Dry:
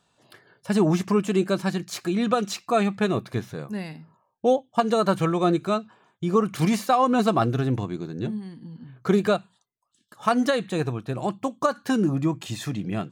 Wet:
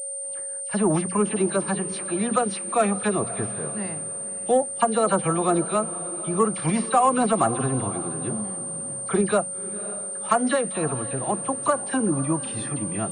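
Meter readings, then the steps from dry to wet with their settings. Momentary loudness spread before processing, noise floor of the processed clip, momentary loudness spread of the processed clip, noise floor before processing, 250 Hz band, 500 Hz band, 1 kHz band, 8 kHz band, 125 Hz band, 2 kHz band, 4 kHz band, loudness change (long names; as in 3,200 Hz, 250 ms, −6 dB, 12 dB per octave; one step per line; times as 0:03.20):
11 LU, −32 dBFS, 8 LU, −71 dBFS, −1.5 dB, 0.0 dB, +1.5 dB, +16.5 dB, −2.5 dB, 0.0 dB, −4.5 dB, +0.5 dB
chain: parametric band 920 Hz +4.5 dB 1.6 octaves
mains-hum notches 60/120/180/240 Hz
all-pass dispersion lows, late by 49 ms, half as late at 2,200 Hz
in parallel at −6 dB: soft clipping −13 dBFS, distortion −15 dB
on the sum: steady tone 550 Hz −36 dBFS
on a send: feedback delay with all-pass diffusion 544 ms, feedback 40%, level −15 dB
on the sum: switching amplifier with a slow clock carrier 8,900 Hz
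level −5 dB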